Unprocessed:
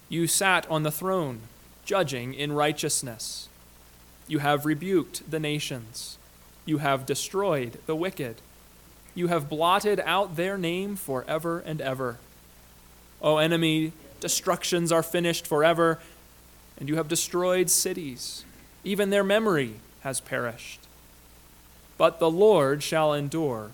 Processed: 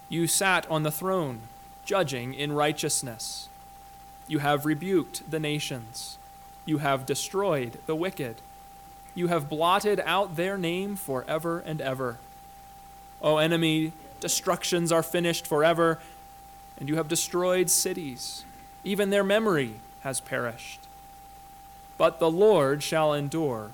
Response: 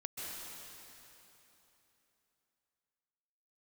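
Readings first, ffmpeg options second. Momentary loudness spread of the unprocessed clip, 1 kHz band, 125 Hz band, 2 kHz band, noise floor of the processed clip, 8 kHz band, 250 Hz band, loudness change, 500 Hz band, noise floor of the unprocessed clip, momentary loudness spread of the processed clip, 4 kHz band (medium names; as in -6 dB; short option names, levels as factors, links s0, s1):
14 LU, -0.5 dB, -0.5 dB, -1.0 dB, -48 dBFS, -0.5 dB, -0.5 dB, -0.5 dB, -1.0 dB, -53 dBFS, 14 LU, -1.0 dB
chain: -af "aeval=exprs='val(0)+0.00501*sin(2*PI*790*n/s)':c=same,acontrast=54,volume=0.473"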